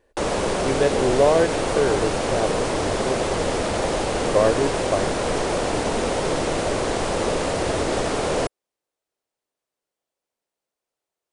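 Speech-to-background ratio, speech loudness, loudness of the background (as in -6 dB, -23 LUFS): 0.0 dB, -23.5 LUFS, -23.5 LUFS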